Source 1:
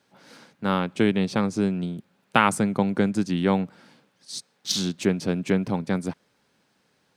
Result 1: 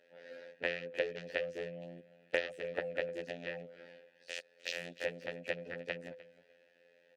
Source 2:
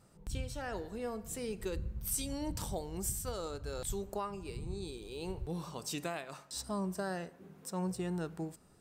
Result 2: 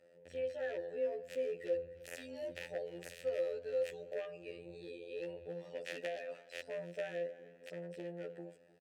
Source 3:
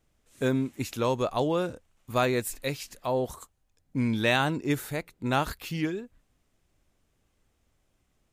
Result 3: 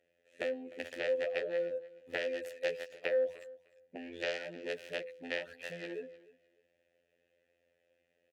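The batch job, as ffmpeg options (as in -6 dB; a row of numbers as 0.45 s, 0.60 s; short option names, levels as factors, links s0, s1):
-filter_complex "[0:a]afftfilt=real='hypot(re,im)*cos(PI*b)':imag='0':win_size=2048:overlap=0.75,bandreject=f=101.9:t=h:w=4,bandreject=f=203.8:t=h:w=4,bandreject=f=305.7:t=h:w=4,bandreject=f=407.6:t=h:w=4,bandreject=f=509.5:t=h:w=4,acompressor=threshold=0.02:ratio=16,highpass=f=56:w=0.5412,highpass=f=56:w=1.3066,aeval=exprs='0.141*(cos(1*acos(clip(val(0)/0.141,-1,1)))-cos(1*PI/2))+0.0355*(cos(7*acos(clip(val(0)/0.141,-1,1)))-cos(7*PI/2))':c=same,asplit=3[s0][s1][s2];[s0]bandpass=f=530:t=q:w=8,volume=1[s3];[s1]bandpass=f=1840:t=q:w=8,volume=0.501[s4];[s2]bandpass=f=2480:t=q:w=8,volume=0.355[s5];[s3][s4][s5]amix=inputs=3:normalize=0,asplit=2[s6][s7];[s7]aecho=0:1:303|606:0.1|0.017[s8];[s6][s8]amix=inputs=2:normalize=0,volume=7.5"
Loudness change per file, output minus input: -15.0 LU, -2.5 LU, -8.5 LU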